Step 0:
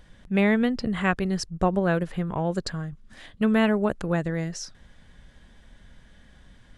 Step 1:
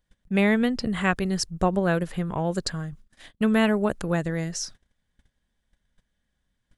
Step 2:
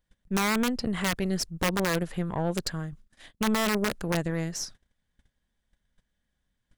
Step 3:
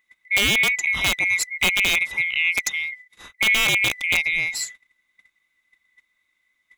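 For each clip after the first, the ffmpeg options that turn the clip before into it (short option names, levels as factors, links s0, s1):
-af "agate=range=0.0631:threshold=0.00631:ratio=16:detection=peak,highshelf=f=5900:g=10"
-af "aeval=exprs='(mod(5.31*val(0)+1,2)-1)/5.31':c=same,aeval=exprs='(tanh(8.91*val(0)+0.55)-tanh(0.55))/8.91':c=same"
-af "afftfilt=real='real(if(lt(b,920),b+92*(1-2*mod(floor(b/92),2)),b),0)':imag='imag(if(lt(b,920),b+92*(1-2*mod(floor(b/92),2)),b),0)':win_size=2048:overlap=0.75,volume=2.11"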